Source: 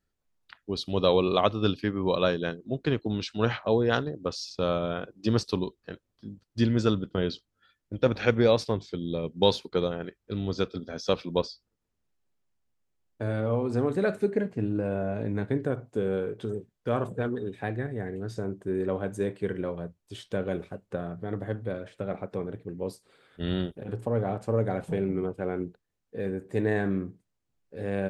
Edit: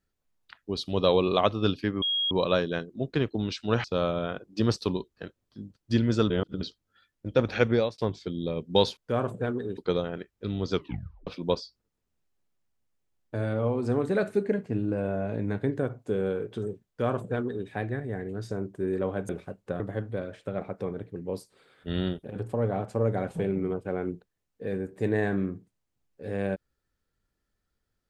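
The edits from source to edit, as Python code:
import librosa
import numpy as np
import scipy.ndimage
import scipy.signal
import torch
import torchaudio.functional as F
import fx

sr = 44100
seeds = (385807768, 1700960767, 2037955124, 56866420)

y = fx.edit(x, sr, fx.insert_tone(at_s=2.02, length_s=0.29, hz=3280.0, db=-24.0),
    fx.cut(start_s=3.55, length_s=0.96),
    fx.reverse_span(start_s=6.97, length_s=0.31),
    fx.fade_out_span(start_s=8.38, length_s=0.27),
    fx.tape_stop(start_s=10.6, length_s=0.54),
    fx.duplicate(start_s=16.74, length_s=0.8, to_s=9.64),
    fx.cut(start_s=19.16, length_s=1.37),
    fx.cut(start_s=21.04, length_s=0.29), tone=tone)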